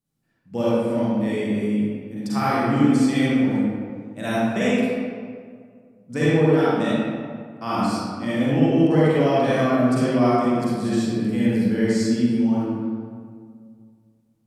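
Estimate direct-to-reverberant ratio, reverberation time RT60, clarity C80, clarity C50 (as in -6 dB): -9.5 dB, 2.0 s, -2.5 dB, -6.0 dB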